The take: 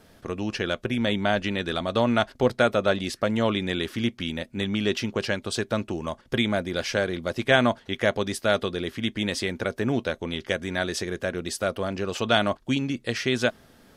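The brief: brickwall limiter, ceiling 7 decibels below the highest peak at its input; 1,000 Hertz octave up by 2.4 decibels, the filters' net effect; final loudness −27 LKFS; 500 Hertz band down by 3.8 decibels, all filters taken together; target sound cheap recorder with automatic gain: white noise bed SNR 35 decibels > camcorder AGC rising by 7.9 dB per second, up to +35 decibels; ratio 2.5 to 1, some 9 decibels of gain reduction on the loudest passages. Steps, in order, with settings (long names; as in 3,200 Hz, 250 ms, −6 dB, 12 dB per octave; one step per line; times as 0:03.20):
parametric band 500 Hz −7 dB
parametric band 1,000 Hz +6 dB
downward compressor 2.5 to 1, threshold −29 dBFS
brickwall limiter −20 dBFS
white noise bed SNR 35 dB
camcorder AGC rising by 7.9 dB per second, up to +35 dB
level +6.5 dB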